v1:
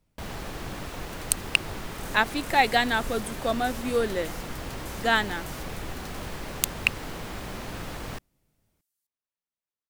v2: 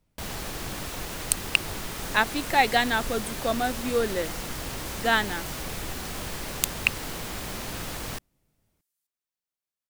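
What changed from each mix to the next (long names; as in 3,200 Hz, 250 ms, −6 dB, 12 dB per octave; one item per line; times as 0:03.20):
first sound: add high-shelf EQ 3,700 Hz +10 dB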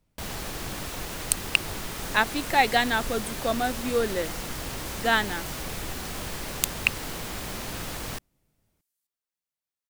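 nothing changed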